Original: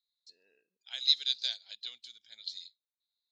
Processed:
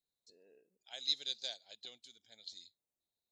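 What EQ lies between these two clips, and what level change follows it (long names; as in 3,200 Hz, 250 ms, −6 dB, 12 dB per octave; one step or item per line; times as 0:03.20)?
flat-topped bell 2,300 Hz −14 dB 2.7 octaves
high-shelf EQ 5,500 Hz −10.5 dB
+8.5 dB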